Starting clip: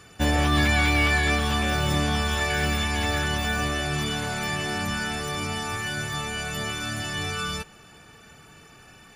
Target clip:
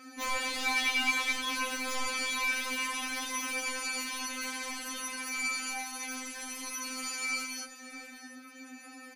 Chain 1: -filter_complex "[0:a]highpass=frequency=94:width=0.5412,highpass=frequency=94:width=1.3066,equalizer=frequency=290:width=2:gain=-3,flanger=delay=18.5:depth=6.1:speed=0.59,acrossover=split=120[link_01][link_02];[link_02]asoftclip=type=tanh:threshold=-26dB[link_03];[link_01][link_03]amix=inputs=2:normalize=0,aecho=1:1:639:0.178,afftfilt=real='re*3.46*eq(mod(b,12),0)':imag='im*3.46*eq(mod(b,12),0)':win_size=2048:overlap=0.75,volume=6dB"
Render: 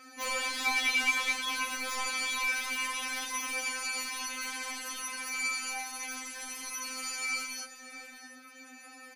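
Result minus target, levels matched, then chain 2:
250 Hz band −6.0 dB
-filter_complex "[0:a]highpass=frequency=94:width=0.5412,highpass=frequency=94:width=1.3066,equalizer=frequency=290:width=2:gain=5.5,flanger=delay=18.5:depth=6.1:speed=0.59,acrossover=split=120[link_01][link_02];[link_02]asoftclip=type=tanh:threshold=-26dB[link_03];[link_01][link_03]amix=inputs=2:normalize=0,aecho=1:1:639:0.178,afftfilt=real='re*3.46*eq(mod(b,12),0)':imag='im*3.46*eq(mod(b,12),0)':win_size=2048:overlap=0.75,volume=6dB"

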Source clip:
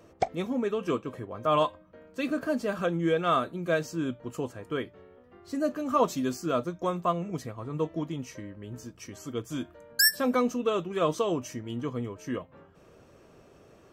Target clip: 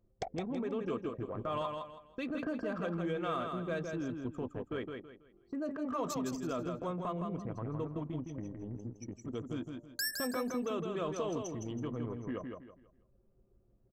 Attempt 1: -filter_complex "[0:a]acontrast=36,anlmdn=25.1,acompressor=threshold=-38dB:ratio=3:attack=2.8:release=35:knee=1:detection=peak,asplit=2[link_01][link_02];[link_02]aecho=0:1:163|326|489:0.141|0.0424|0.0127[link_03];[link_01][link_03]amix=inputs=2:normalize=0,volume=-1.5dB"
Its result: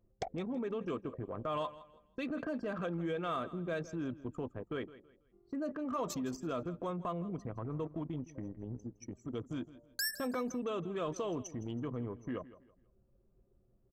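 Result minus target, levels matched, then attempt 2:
echo-to-direct −12 dB
-filter_complex "[0:a]acontrast=36,anlmdn=25.1,acompressor=threshold=-38dB:ratio=3:attack=2.8:release=35:knee=1:detection=peak,asplit=2[link_01][link_02];[link_02]aecho=0:1:163|326|489|652:0.562|0.169|0.0506|0.0152[link_03];[link_01][link_03]amix=inputs=2:normalize=0,volume=-1.5dB"

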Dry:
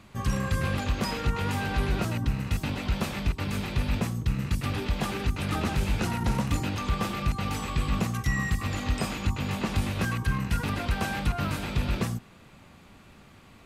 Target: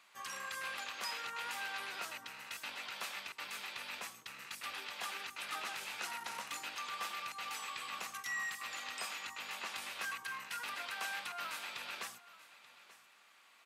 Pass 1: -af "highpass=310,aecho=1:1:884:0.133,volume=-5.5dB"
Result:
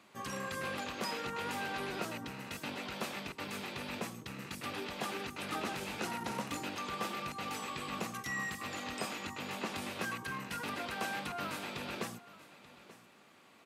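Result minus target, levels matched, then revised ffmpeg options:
250 Hz band +18.0 dB
-af "highpass=1100,aecho=1:1:884:0.133,volume=-5.5dB"

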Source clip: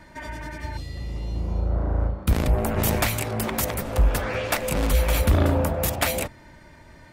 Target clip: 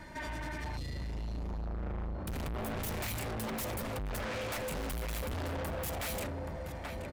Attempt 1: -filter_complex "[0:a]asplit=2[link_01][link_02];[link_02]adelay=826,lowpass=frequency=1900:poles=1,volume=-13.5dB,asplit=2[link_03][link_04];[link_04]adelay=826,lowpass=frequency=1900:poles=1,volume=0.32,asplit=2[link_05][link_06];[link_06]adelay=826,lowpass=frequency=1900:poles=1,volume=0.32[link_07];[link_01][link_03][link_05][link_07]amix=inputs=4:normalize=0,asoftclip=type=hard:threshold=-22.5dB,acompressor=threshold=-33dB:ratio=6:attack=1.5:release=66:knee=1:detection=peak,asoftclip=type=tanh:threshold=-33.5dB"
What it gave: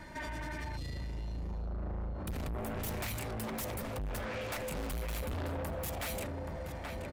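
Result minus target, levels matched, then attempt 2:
hard clipping: distortion −4 dB
-filter_complex "[0:a]asplit=2[link_01][link_02];[link_02]adelay=826,lowpass=frequency=1900:poles=1,volume=-13.5dB,asplit=2[link_03][link_04];[link_04]adelay=826,lowpass=frequency=1900:poles=1,volume=0.32,asplit=2[link_05][link_06];[link_06]adelay=826,lowpass=frequency=1900:poles=1,volume=0.32[link_07];[link_01][link_03][link_05][link_07]amix=inputs=4:normalize=0,asoftclip=type=hard:threshold=-30.5dB,acompressor=threshold=-33dB:ratio=6:attack=1.5:release=66:knee=1:detection=peak,asoftclip=type=tanh:threshold=-33.5dB"

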